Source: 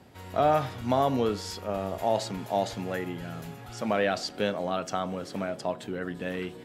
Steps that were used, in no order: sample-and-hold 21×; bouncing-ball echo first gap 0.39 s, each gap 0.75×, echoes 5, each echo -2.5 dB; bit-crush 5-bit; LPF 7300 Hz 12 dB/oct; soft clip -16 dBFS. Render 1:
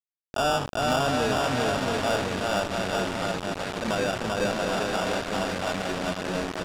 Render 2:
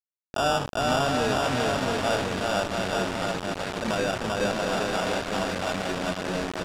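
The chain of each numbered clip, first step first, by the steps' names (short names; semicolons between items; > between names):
sample-and-hold > bouncing-ball echo > bit-crush > LPF > soft clip; sample-and-hold > bouncing-ball echo > soft clip > bit-crush > LPF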